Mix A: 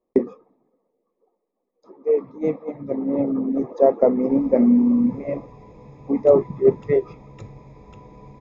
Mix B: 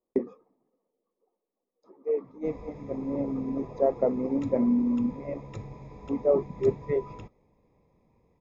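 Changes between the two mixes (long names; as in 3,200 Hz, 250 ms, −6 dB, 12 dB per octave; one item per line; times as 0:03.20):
speech −8.5 dB
background: entry −1.85 s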